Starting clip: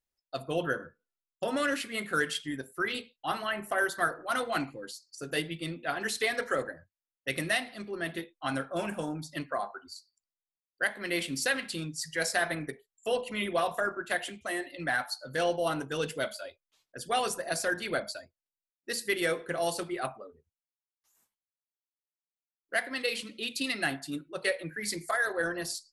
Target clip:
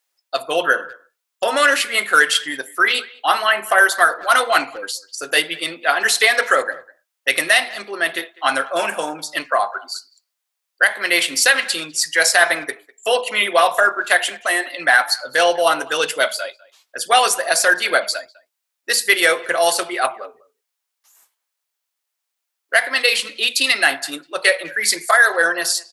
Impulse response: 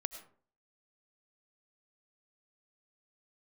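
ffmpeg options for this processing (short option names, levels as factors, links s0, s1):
-filter_complex "[0:a]highpass=660,asplit=2[s0][s1];[s1]adelay=200,highpass=300,lowpass=3400,asoftclip=type=hard:threshold=0.0596,volume=0.0794[s2];[s0][s2]amix=inputs=2:normalize=0,alimiter=level_in=7.94:limit=0.891:release=50:level=0:latency=1,volume=0.891"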